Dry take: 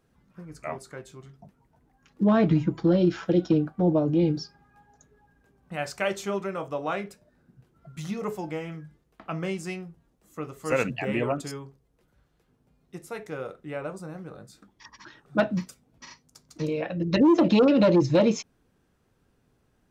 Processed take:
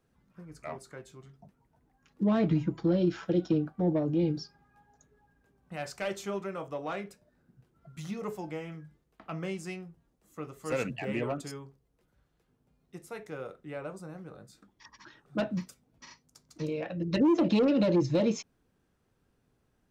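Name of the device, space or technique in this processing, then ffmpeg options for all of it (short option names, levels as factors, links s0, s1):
one-band saturation: -filter_complex "[0:a]acrossover=split=510|3400[s0][s1][s2];[s1]asoftclip=type=tanh:threshold=0.0562[s3];[s0][s3][s2]amix=inputs=3:normalize=0,volume=0.562"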